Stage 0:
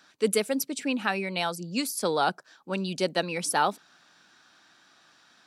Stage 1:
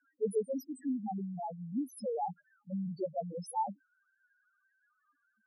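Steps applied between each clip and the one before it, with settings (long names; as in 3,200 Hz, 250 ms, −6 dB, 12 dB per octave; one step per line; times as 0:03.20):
each half-wave held at its own peak
spectral peaks only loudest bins 1
level −4 dB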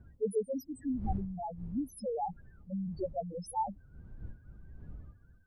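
wind on the microphone 82 Hz −46 dBFS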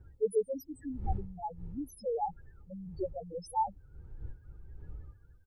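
comb filter 2.3 ms, depth 65%
level −1.5 dB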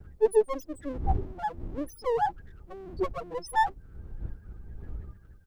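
lower of the sound and its delayed copy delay 2.5 ms
level +7.5 dB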